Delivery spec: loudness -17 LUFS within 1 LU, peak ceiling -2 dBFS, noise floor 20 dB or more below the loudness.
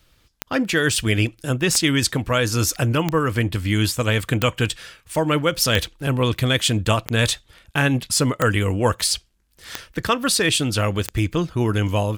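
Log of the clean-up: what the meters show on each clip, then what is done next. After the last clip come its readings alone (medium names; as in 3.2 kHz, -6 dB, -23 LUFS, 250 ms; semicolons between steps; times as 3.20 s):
clicks found 9; loudness -20.5 LUFS; peak level -4.5 dBFS; loudness target -17.0 LUFS
-> de-click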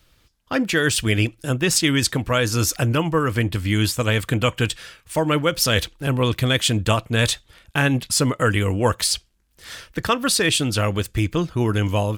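clicks found 0; loudness -20.5 LUFS; peak level -4.5 dBFS; loudness target -17.0 LUFS
-> trim +3.5 dB; peak limiter -2 dBFS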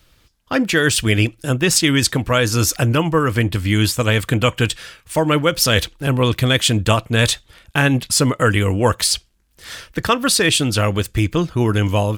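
loudness -17.0 LUFS; peak level -2.0 dBFS; noise floor -56 dBFS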